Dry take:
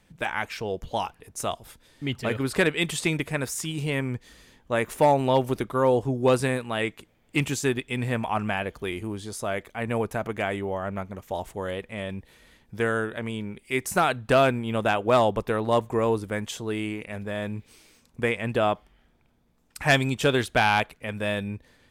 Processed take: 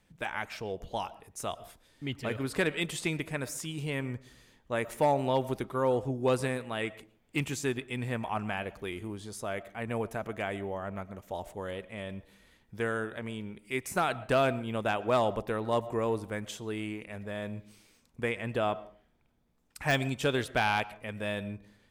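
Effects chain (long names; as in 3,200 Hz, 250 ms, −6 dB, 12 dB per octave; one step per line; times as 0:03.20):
de-essing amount 45%
on a send: high-shelf EQ 4,800 Hz −10 dB + convolution reverb RT60 0.40 s, pre-delay 75 ms, DRR 18 dB
on the sum: level −6.5 dB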